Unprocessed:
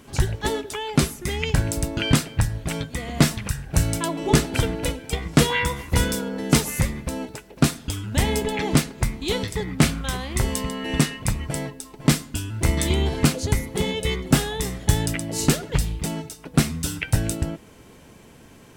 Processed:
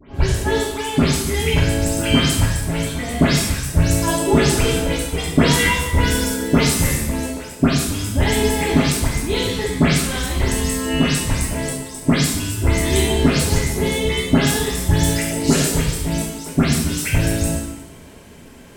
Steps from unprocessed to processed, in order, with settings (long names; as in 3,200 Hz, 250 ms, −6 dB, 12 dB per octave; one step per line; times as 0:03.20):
every frequency bin delayed by itself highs late, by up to 145 ms
coupled-rooms reverb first 0.93 s, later 2.9 s, from −23 dB, DRR −4.5 dB